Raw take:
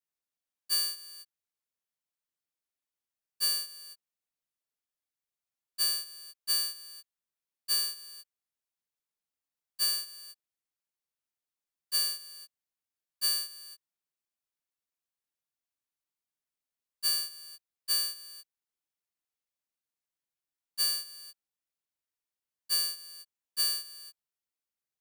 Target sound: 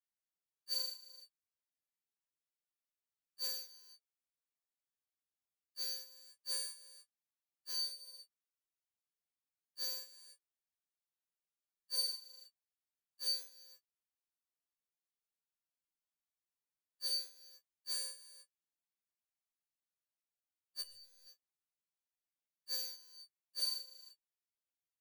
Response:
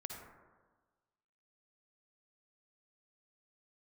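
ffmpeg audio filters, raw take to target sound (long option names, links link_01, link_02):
-filter_complex "[0:a]flanger=delay=16.5:depth=7.2:speed=0.26,asettb=1/sr,asplit=3[link_01][link_02][link_03];[link_01]atrim=end=20.814[link_04];[link_02]atrim=start=20.81:end=21.27,asetpts=PTS-STARTPTS,afade=type=in:duration=0.004:curve=qsin,afade=type=out:start_time=0.456:duration=0.004:curve=qsin,aeval=exprs='(tanh(398*val(0)+0.15)-tanh(0.15))/398':channel_layout=same[link_05];[link_03]atrim=start=21.266[link_06];[link_04][link_05]acrossfade=duration=0.004:curve1=hsin:curve2=qsin[link_07];[link_07][link_06]acrossfade=duration=0.004:curve1=qsin:curve2=hsin,afftfilt=real='re*2*eq(mod(b,4),0)':imag='im*2*eq(mod(b,4),0)':win_size=2048:overlap=0.75,volume=-3dB"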